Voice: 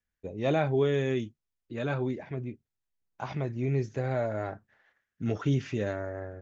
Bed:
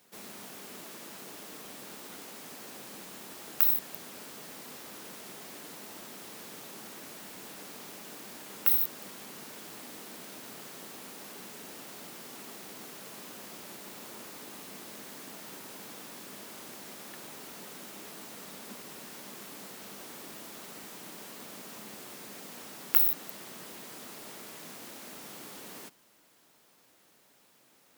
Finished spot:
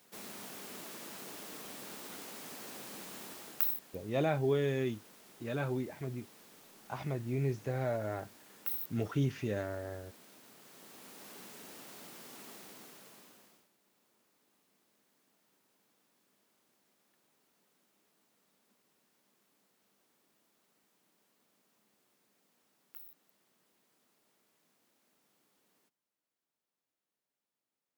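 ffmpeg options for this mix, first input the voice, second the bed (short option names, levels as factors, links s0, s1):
-filter_complex "[0:a]adelay=3700,volume=0.596[s0];[1:a]volume=2.11,afade=t=out:st=3.24:d=0.56:silence=0.266073,afade=t=in:st=10.6:d=0.74:silence=0.421697,afade=t=out:st=12.52:d=1.17:silence=0.0668344[s1];[s0][s1]amix=inputs=2:normalize=0"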